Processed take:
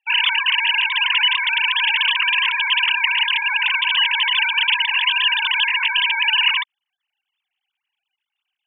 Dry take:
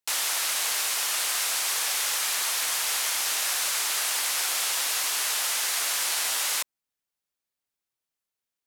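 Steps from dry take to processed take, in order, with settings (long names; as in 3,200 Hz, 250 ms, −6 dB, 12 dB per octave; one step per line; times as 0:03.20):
three sine waves on the formant tracks
high-pass filter 600 Hz 6 dB per octave
parametric band 2,900 Hz +14.5 dB 0.63 octaves
level +2 dB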